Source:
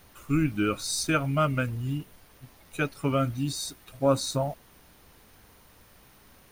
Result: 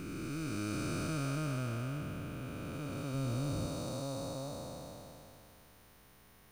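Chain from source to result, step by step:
spectrum smeared in time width 1,170 ms
0:03.14–0:03.67: low-shelf EQ 130 Hz +10 dB
level −3.5 dB

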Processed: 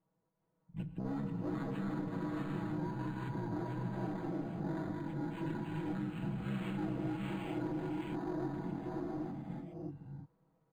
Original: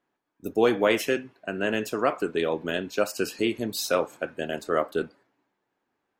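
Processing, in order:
delay that plays each chunk backwards 201 ms, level −1 dB
low-shelf EQ 210 Hz +6 dB
far-end echo of a speakerphone 180 ms, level −27 dB
soft clipping −21 dBFS, distortion −9 dB
parametric band 5,800 Hz −7 dB 1.6 octaves
reverb whose tail is shaped and stops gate 500 ms rising, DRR 0 dB
wrong playback speed 78 rpm record played at 45 rpm
downward compressor 5 to 1, threshold −32 dBFS, peak gain reduction 13 dB
comb filter 6.2 ms, depth 87%
linearly interpolated sample-rate reduction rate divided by 8×
level −6.5 dB

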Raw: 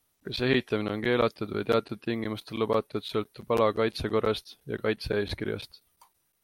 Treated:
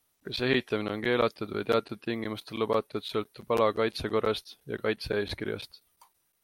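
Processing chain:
low-shelf EQ 260 Hz −4.5 dB

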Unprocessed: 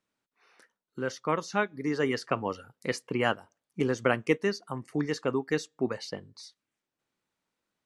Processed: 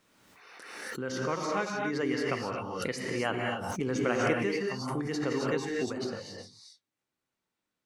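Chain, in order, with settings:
reverb whose tail is shaped and stops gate 290 ms rising, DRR 0 dB
background raised ahead of every attack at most 35 dB per second
level −5.5 dB

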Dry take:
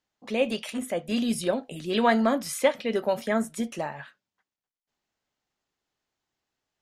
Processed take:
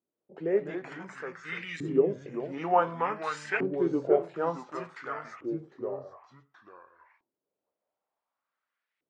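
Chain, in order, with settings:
delay with pitch and tempo change per echo 109 ms, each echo −2 semitones, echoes 2, each echo −6 dB
auto-filter band-pass saw up 0.74 Hz 410–2,800 Hz
speed change −25%
level +4 dB

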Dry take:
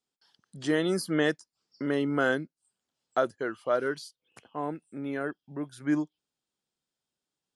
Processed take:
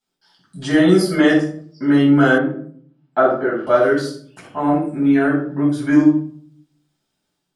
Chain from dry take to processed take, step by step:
rectangular room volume 660 cubic metres, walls furnished, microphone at 8.2 metres
automatic gain control gain up to 4 dB
0:02.38–0:03.67: band-pass filter 130–2,000 Hz

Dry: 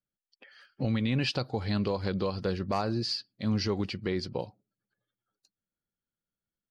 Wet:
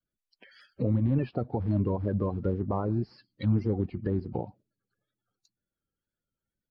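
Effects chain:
spectral magnitudes quantised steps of 30 dB
low-shelf EQ 150 Hz +8 dB
treble cut that deepens with the level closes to 960 Hz, closed at −27 dBFS
pitch vibrato 2 Hz 74 cents

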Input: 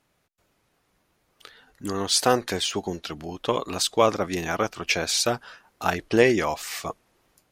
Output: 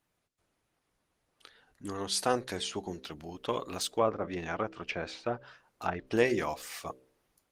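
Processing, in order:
hum removal 64.51 Hz, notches 9
0:03.93–0:06.07: treble cut that deepens with the level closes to 1,500 Hz, closed at −19.5 dBFS
level −7.5 dB
Opus 24 kbit/s 48,000 Hz

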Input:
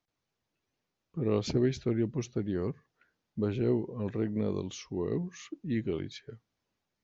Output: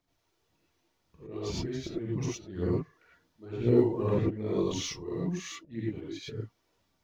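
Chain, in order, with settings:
volume swells 579 ms
phase shifter 1.9 Hz, delay 3.3 ms, feedback 60%
reverb whose tail is shaped and stops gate 130 ms rising, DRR −6.5 dB

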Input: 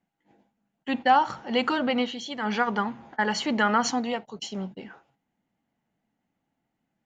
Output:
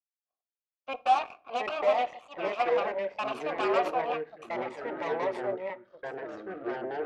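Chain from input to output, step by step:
harmonic generator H 5 −14 dB, 7 −11 dB, 8 −8 dB, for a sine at −10 dBFS
formant filter a
delay with pitch and tempo change per echo 487 ms, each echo −4 semitones, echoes 3
on a send: convolution reverb RT60 0.45 s, pre-delay 3 ms, DRR 18 dB

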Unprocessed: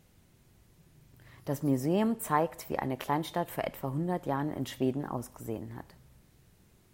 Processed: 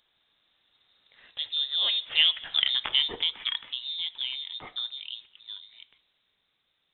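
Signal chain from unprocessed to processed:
source passing by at 0:02.58, 23 m/s, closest 9.3 metres
high-pass filter 300 Hz 12 dB per octave
in parallel at +1 dB: downward compressor, threshold −45 dBFS, peak gain reduction 19 dB
on the sum: soft clipping −15 dBFS, distortion −24 dB
voice inversion scrambler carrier 3,900 Hz
level +8 dB

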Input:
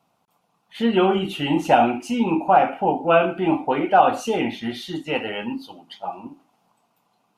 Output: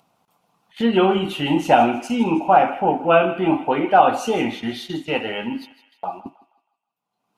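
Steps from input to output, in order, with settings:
noise gate −34 dBFS, range −52 dB
upward compression, threshold −27 dBFS
on a send: feedback echo with a high-pass in the loop 159 ms, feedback 48%, high-pass 910 Hz, level −14 dB
on the sum: level +1.5 dB

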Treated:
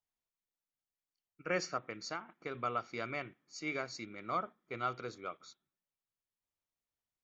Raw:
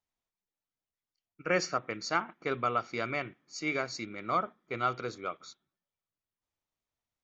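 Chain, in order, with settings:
0:01.88–0:02.55: downward compressor 6 to 1, threshold −31 dBFS, peak gain reduction 8 dB
level −6 dB

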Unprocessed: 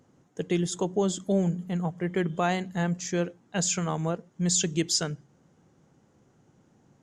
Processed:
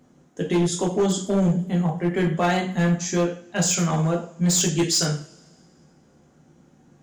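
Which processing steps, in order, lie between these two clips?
coupled-rooms reverb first 0.41 s, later 2 s, from −27 dB, DRR −1.5 dB
gain into a clipping stage and back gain 17.5 dB
level +2 dB

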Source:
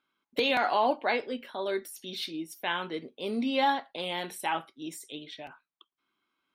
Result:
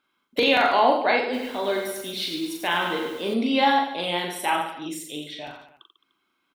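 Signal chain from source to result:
reverse bouncing-ball delay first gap 40 ms, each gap 1.2×, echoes 5
0:01.23–0:03.34: feedback echo at a low word length 103 ms, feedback 55%, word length 8 bits, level −6.5 dB
level +5 dB

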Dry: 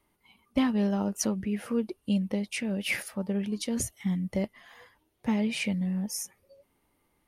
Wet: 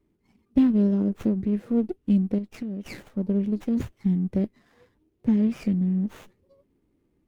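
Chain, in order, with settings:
low shelf with overshoot 530 Hz +12.5 dB, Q 1.5
0:02.38–0:02.86: downward compressor 6 to 1, threshold −22 dBFS, peak gain reduction 7.5 dB
windowed peak hold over 9 samples
level −8 dB

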